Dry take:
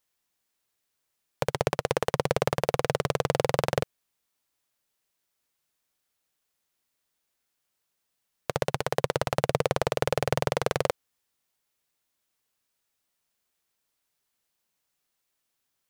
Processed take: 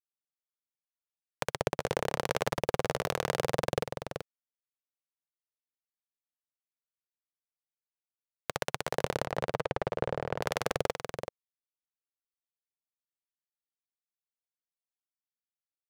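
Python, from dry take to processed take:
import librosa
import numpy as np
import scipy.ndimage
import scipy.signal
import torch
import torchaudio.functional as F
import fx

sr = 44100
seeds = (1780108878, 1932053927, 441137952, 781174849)

y = fx.lowpass(x, sr, hz=fx.line((9.25, 1800.0), (10.41, 1100.0)), slope=6, at=(9.25, 10.41), fade=0.02)
y = fx.power_curve(y, sr, exponent=1.4)
y = fx.harmonic_tremolo(y, sr, hz=1.1, depth_pct=50, crossover_hz=780.0)
y = y + 10.0 ** (-7.5 / 20.0) * np.pad(y, (int(382 * sr / 1000.0), 0))[:len(y)]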